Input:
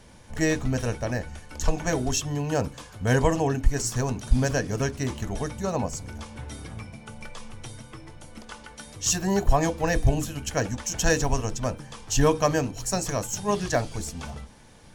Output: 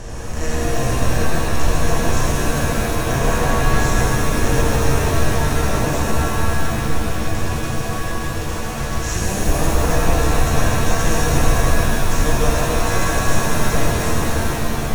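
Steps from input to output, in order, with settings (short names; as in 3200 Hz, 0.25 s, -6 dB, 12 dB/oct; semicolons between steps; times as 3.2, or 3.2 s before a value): per-bin compression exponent 0.4; low shelf 100 Hz +9 dB; shimmer reverb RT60 3.2 s, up +7 st, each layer -2 dB, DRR -5.5 dB; gain -11.5 dB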